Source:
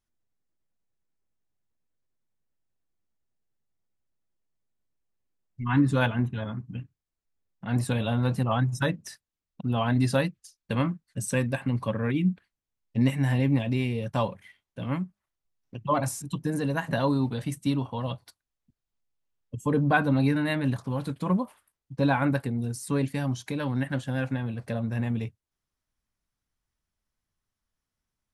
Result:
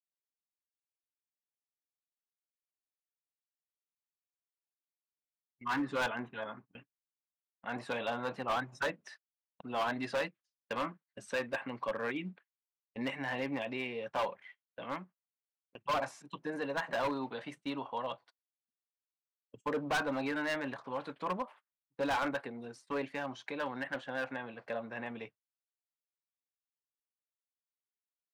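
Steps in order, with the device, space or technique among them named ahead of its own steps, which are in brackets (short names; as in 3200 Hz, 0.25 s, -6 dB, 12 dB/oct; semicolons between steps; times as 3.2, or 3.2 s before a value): walkie-talkie (BPF 550–2700 Hz; hard clip -28.5 dBFS, distortion -8 dB; gate -54 dBFS, range -22 dB)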